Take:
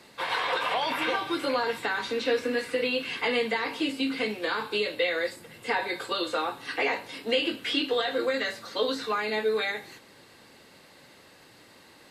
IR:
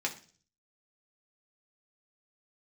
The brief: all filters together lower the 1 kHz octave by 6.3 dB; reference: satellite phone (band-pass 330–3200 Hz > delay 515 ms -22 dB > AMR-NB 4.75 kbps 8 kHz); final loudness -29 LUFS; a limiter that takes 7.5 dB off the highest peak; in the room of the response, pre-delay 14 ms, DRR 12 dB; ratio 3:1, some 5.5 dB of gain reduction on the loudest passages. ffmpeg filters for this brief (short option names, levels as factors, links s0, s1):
-filter_complex "[0:a]equalizer=f=1000:t=o:g=-8,acompressor=threshold=0.0316:ratio=3,alimiter=level_in=1.26:limit=0.0631:level=0:latency=1,volume=0.794,asplit=2[s0][s1];[1:a]atrim=start_sample=2205,adelay=14[s2];[s1][s2]afir=irnorm=-1:irlink=0,volume=0.141[s3];[s0][s3]amix=inputs=2:normalize=0,highpass=330,lowpass=3200,aecho=1:1:515:0.0794,volume=3.55" -ar 8000 -c:a libopencore_amrnb -b:a 4750